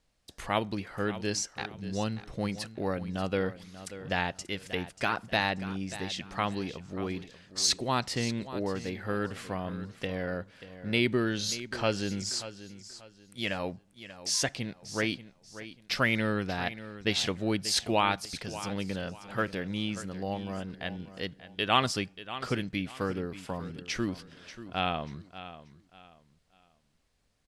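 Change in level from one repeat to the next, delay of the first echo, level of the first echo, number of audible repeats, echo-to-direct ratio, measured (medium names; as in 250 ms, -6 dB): -11.0 dB, 586 ms, -14.0 dB, 2, -13.5 dB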